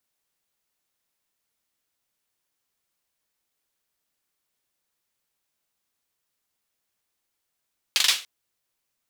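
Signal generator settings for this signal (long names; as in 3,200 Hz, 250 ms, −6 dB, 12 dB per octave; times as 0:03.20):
synth clap length 0.29 s, bursts 4, apart 41 ms, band 3,400 Hz, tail 0.31 s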